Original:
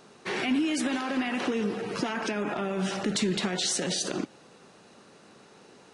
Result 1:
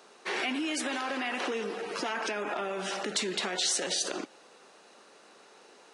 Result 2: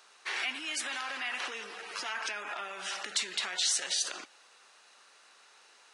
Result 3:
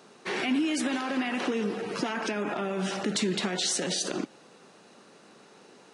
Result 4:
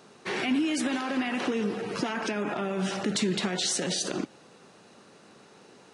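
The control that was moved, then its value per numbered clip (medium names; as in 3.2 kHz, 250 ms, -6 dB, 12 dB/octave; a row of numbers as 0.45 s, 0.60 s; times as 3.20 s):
high-pass, cutoff frequency: 420 Hz, 1.2 kHz, 160 Hz, 58 Hz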